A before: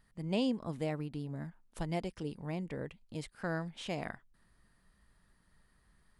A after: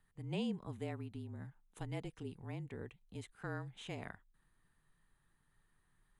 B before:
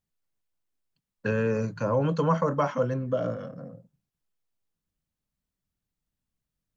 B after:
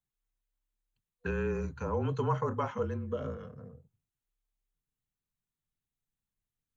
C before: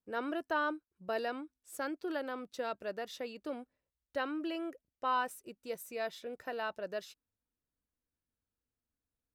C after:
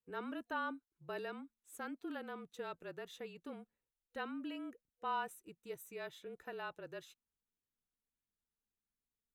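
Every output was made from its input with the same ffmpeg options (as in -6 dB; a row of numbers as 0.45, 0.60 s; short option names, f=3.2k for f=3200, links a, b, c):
-af "superequalizer=8b=0.562:14b=0.398,afreqshift=-34,volume=-6dB"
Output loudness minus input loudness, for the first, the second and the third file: -6.5, -7.0, -7.0 LU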